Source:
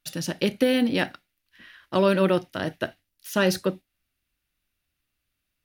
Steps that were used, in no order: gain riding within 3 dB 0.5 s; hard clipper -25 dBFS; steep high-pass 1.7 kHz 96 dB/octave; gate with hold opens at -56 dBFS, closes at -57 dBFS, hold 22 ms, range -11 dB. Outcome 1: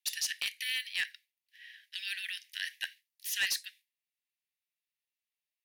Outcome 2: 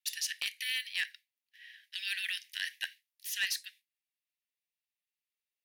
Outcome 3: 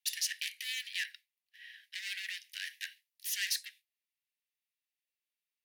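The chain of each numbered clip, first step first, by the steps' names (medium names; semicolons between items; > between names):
gate with hold > gain riding > steep high-pass > hard clipper; steep high-pass > gate with hold > gain riding > hard clipper; gain riding > hard clipper > steep high-pass > gate with hold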